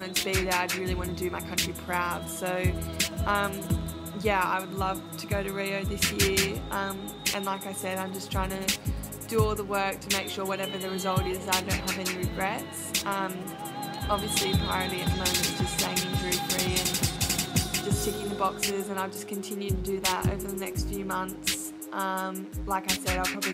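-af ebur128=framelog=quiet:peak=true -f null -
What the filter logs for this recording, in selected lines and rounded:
Integrated loudness:
  I:         -28.7 LUFS
  Threshold: -38.7 LUFS
Loudness range:
  LRA:         3.7 LU
  Threshold: -48.6 LUFS
  LRA low:   -30.2 LUFS
  LRA high:  -26.5 LUFS
True peak:
  Peak:      -10.5 dBFS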